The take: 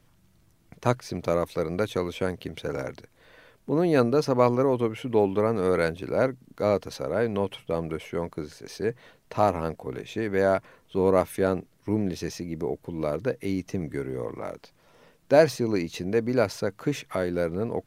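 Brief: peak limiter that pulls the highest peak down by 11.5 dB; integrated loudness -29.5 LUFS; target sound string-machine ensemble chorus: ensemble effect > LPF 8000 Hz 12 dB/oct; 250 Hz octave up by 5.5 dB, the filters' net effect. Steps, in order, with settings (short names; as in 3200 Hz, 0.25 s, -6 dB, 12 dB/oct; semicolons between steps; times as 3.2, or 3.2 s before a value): bell 250 Hz +7 dB; limiter -15.5 dBFS; ensemble effect; LPF 8000 Hz 12 dB/oct; gain +1.5 dB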